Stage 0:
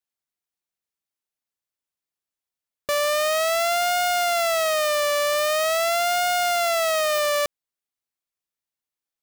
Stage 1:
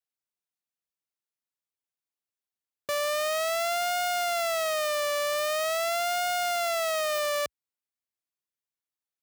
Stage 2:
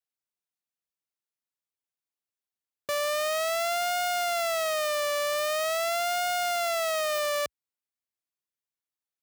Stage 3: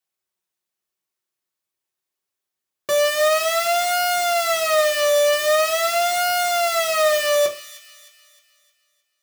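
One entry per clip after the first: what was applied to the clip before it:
HPF 61 Hz 24 dB/oct; gain -6 dB
nothing audible
low shelf 160 Hz -4 dB; thin delay 0.309 s, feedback 44%, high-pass 2500 Hz, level -13 dB; on a send at -1.5 dB: reverb RT60 0.30 s, pre-delay 3 ms; on the sum: gain +6.5 dB

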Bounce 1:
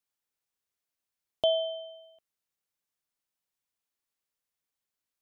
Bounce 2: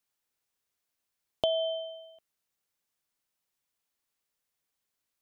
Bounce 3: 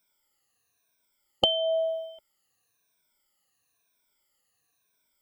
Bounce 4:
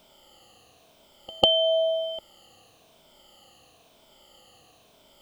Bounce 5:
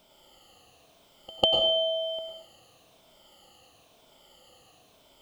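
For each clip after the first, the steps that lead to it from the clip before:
compressor 5:1, threshold -29 dBFS, peak gain reduction 7.5 dB; gain +4 dB
moving spectral ripple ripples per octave 1.6, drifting -1 Hz, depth 21 dB; gain +4.5 dB
per-bin compression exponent 0.6; pre-echo 0.148 s -23 dB; gain +2.5 dB
plate-style reverb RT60 0.63 s, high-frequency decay 0.85×, pre-delay 85 ms, DRR 2 dB; gain -3.5 dB

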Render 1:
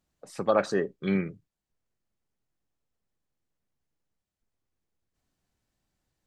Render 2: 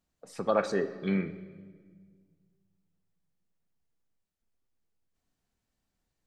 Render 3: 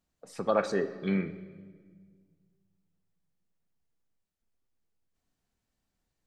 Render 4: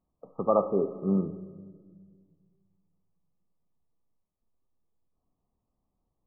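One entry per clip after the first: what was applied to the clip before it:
reverb RT60 1.6 s, pre-delay 4 ms, DRR 9 dB; gain -3 dB
nothing audible
brick-wall FIR low-pass 1300 Hz; gain +3 dB

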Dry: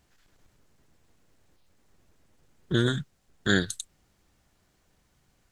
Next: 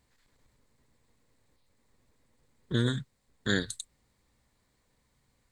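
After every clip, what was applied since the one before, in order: ripple EQ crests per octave 0.98, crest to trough 6 dB; gain -4.5 dB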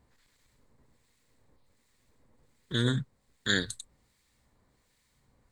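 harmonic tremolo 1.3 Hz, depth 70%, crossover 1500 Hz; gain +5.5 dB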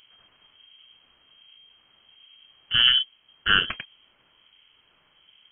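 careless resampling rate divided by 6×, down none, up zero stuff; inverted band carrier 3200 Hz; gain +8.5 dB

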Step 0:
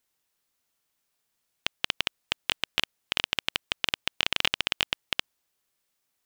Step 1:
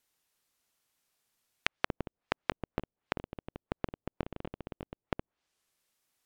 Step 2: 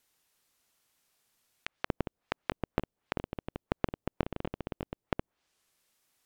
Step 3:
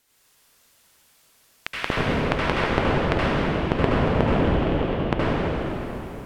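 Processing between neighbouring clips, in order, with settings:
treble ducked by the level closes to 430 Hz, closed at -32.5 dBFS
negative-ratio compressor -32 dBFS, ratio -0.5; gain +3 dB
reverb RT60 3.5 s, pre-delay 68 ms, DRR -8.5 dB; gain +7 dB

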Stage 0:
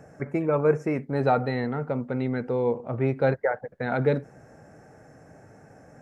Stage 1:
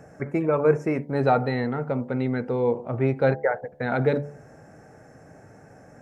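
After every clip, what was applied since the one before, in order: de-hum 72.55 Hz, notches 14; gain +2 dB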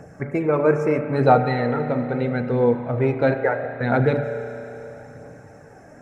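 spring tank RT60 3.2 s, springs 33 ms, chirp 80 ms, DRR 6.5 dB; phaser 0.76 Hz, delay 3.3 ms, feedback 33%; gain +2.5 dB

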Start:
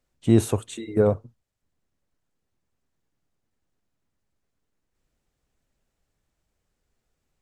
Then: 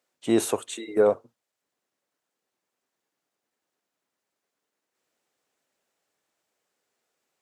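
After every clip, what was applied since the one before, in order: HPF 400 Hz 12 dB/oct; gain +3 dB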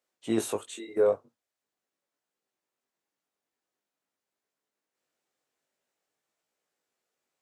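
chorus 0.46 Hz, delay 17.5 ms, depth 3.6 ms; gain -2.5 dB

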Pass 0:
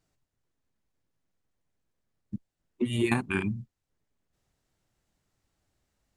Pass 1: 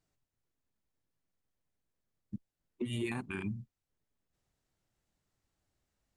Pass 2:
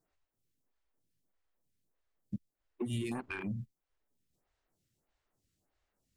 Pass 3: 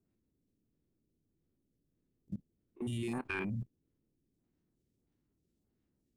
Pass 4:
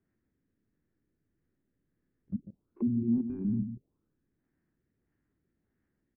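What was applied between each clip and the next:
limiter -21.5 dBFS, peak gain reduction 10 dB; gain -5.5 dB
compressor 1.5:1, threshold -50 dBFS, peak gain reduction 7 dB; sample leveller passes 1; photocell phaser 1.6 Hz; gain +6 dB
stepped spectrum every 50 ms; band noise 31–340 Hz -72 dBFS; level quantiser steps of 22 dB; gain +7.5 dB
echo 0.146 s -8.5 dB; envelope low-pass 240–1800 Hz down, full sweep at -37 dBFS

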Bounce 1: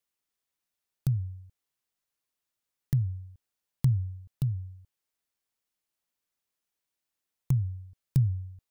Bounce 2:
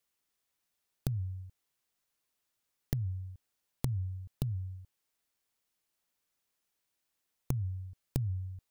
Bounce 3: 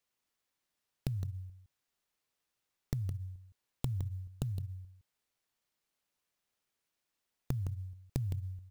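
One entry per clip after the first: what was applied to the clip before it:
dynamic EQ 130 Hz, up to -7 dB, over -38 dBFS, Q 1.2; compressor, threshold -32 dBFS, peak gain reduction 9 dB; gain +3.5 dB
echo 0.163 s -10 dB; clock jitter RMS 0.023 ms; gain -2 dB

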